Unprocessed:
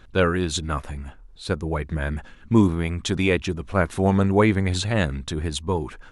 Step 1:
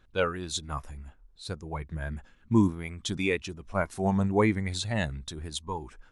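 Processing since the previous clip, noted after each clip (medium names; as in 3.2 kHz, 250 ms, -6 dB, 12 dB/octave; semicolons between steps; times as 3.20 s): spectral noise reduction 8 dB; trim -5 dB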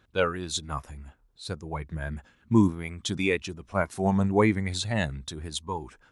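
high-pass 64 Hz; trim +2 dB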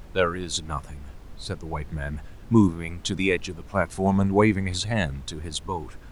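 added noise brown -43 dBFS; trim +2.5 dB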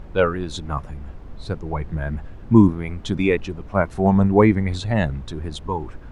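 low-pass 1.3 kHz 6 dB/octave; trim +5.5 dB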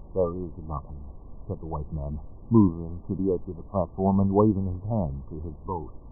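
brick-wall FIR low-pass 1.2 kHz; trim -6 dB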